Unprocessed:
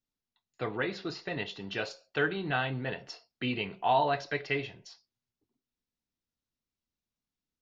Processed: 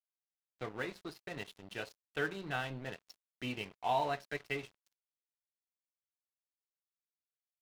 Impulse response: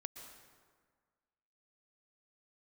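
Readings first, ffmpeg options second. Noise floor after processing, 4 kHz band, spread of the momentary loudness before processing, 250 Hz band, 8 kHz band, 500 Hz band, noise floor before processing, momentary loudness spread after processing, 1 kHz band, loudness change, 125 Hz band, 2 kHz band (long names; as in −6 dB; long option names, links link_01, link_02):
below −85 dBFS, −7.5 dB, 11 LU, −8.0 dB, can't be measured, −7.5 dB, below −85 dBFS, 13 LU, −6.5 dB, −7.0 dB, −8.0 dB, −7.0 dB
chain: -af "aeval=exprs='sgn(val(0))*max(abs(val(0))-0.00794,0)':channel_layout=same,volume=-5.5dB"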